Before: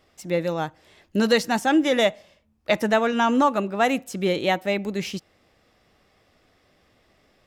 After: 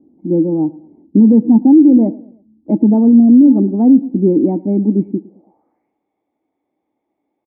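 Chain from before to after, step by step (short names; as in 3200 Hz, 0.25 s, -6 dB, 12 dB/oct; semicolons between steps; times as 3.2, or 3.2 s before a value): spectral repair 3.21–3.49, 740–1700 Hz; vocal tract filter u; band-pass sweep 240 Hz -> 3500 Hz, 5.11–5.99; feedback echo 0.11 s, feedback 41%, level -21 dB; maximiser +28.5 dB; gain -1 dB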